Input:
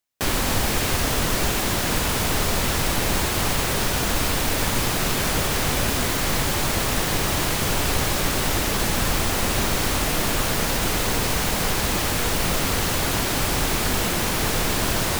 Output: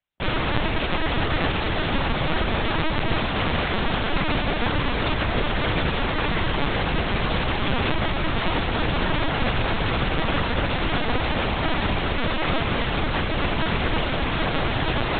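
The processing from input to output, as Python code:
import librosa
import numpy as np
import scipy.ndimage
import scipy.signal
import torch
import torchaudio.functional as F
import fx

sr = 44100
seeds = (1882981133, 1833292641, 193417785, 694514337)

y = fx.notch(x, sr, hz=360.0, q=12.0)
y = fx.echo_filtered(y, sr, ms=767, feedback_pct=78, hz=1400.0, wet_db=-10.5)
y = fx.lpc_vocoder(y, sr, seeds[0], excitation='pitch_kept', order=10)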